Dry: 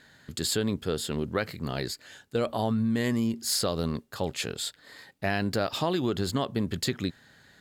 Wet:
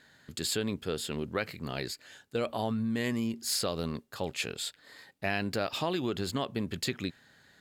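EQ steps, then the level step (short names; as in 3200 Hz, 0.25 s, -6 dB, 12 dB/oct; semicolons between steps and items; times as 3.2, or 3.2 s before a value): low shelf 150 Hz -4 dB; dynamic EQ 2500 Hz, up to +6 dB, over -53 dBFS, Q 3.2; -3.5 dB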